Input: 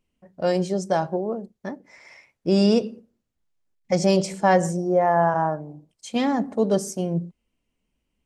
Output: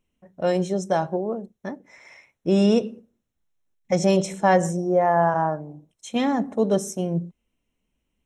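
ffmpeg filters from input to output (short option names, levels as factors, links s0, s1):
-af "asuperstop=centerf=4700:order=12:qfactor=5.3"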